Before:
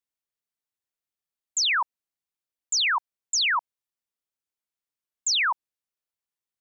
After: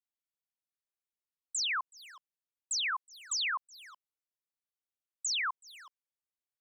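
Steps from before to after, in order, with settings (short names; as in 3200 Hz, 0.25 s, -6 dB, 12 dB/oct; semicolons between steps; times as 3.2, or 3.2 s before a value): speakerphone echo 0.37 s, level -13 dB; pitch shift +1.5 st; gain -9 dB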